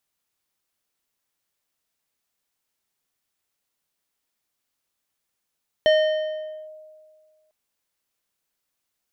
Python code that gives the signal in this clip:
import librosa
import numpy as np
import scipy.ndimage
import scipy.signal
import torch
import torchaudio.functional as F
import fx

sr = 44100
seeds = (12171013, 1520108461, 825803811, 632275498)

y = fx.fm2(sr, length_s=1.65, level_db=-12, carrier_hz=621.0, ratio=3.96, index=0.56, index_s=0.83, decay_s=1.9, shape='linear')